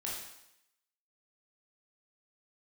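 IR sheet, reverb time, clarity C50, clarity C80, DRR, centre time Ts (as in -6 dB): 0.80 s, 1.5 dB, 5.0 dB, -5.0 dB, 57 ms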